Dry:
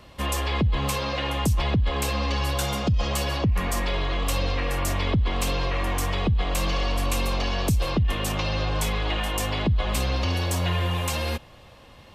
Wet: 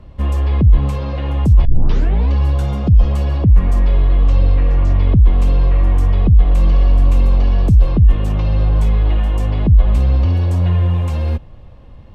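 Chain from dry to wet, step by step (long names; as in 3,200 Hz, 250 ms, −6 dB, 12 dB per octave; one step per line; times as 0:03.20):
0:01.65: tape start 0.65 s
0:04.02–0:05.28: low-pass filter 6,300 Hz 24 dB per octave
spectral tilt −4 dB per octave
level −2 dB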